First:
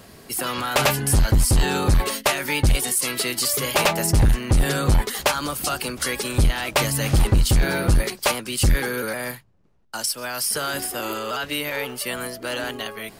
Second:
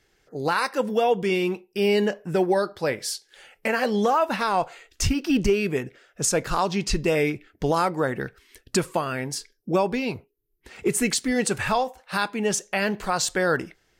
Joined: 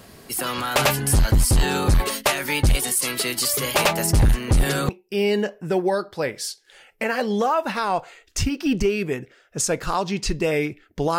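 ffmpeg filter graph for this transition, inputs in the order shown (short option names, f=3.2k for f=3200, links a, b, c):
-filter_complex "[1:a]asplit=2[a][b];[0:a]apad=whole_dur=11.18,atrim=end=11.18,atrim=end=4.892[c];[b]atrim=start=1.528:end=7.82[d];[a]atrim=start=1.12:end=1.53,asetpts=PTS-STARTPTS,volume=-14.5dB,afade=t=in:d=0.004:c=hsin,afade=t=out:st=0.406:d=0.004:c=hsin,adelay=4480[e];[c][d]acrossfade=d=0.004:c1=hsin:c2=hsin[f];[f][e]amix=inputs=2:normalize=0"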